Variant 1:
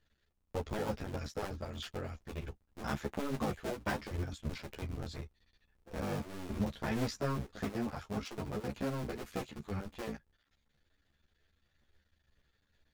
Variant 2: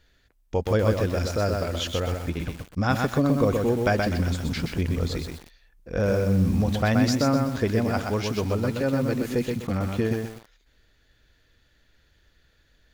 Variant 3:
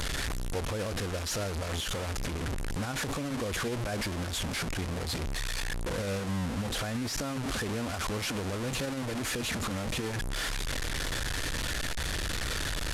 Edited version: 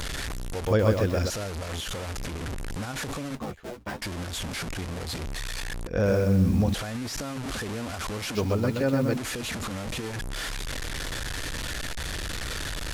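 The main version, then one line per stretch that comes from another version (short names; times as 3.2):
3
0.67–1.3 from 2
3.35–4.02 from 1
5.87–6.74 from 2
8.35–9.17 from 2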